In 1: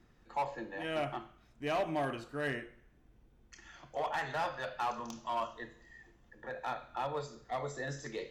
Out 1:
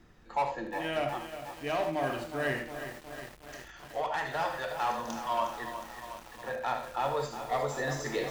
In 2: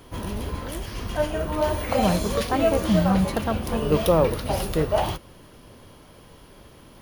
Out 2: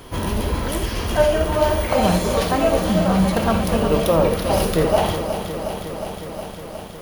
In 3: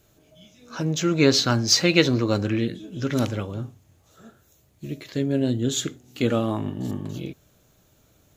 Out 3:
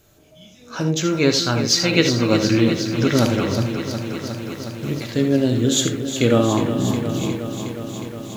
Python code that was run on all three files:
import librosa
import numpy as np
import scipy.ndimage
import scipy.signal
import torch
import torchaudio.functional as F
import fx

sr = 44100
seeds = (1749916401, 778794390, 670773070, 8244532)

y = fx.hum_notches(x, sr, base_hz=50, count=7)
y = fx.rider(y, sr, range_db=4, speed_s=0.5)
y = fx.rev_gated(y, sr, seeds[0], gate_ms=100, shape='rising', drr_db=7.5)
y = fx.echo_crushed(y, sr, ms=362, feedback_pct=80, bits=8, wet_db=-9.5)
y = y * librosa.db_to_amplitude(4.0)